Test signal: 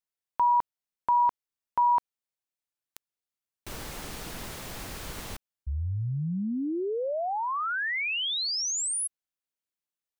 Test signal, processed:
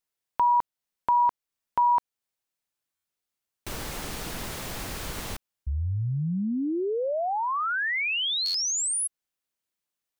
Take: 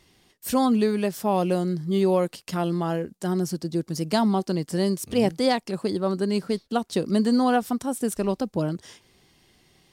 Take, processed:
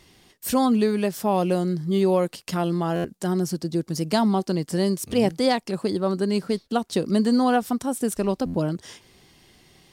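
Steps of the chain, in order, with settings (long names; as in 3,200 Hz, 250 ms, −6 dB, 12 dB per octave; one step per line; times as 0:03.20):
in parallel at −2 dB: downward compressor, threshold −37 dBFS
on the sum: buffer that repeats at 0:02.95/0:08.45, samples 512, times 7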